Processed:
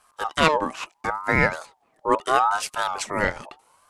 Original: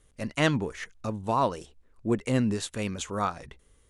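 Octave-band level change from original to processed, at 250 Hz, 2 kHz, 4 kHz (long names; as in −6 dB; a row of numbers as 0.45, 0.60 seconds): −2.5, +11.0, +6.5 decibels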